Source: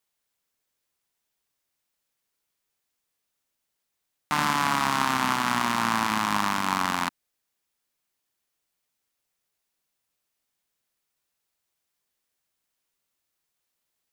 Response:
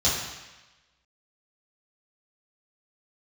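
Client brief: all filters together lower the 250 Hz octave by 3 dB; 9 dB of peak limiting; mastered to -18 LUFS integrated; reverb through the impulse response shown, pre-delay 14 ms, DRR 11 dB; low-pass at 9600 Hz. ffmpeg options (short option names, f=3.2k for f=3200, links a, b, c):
-filter_complex "[0:a]lowpass=9.6k,equalizer=f=250:t=o:g=-3.5,alimiter=limit=-15.5dB:level=0:latency=1,asplit=2[a][b];[1:a]atrim=start_sample=2205,adelay=14[c];[b][c]afir=irnorm=-1:irlink=0,volume=-24.5dB[d];[a][d]amix=inputs=2:normalize=0,volume=12.5dB"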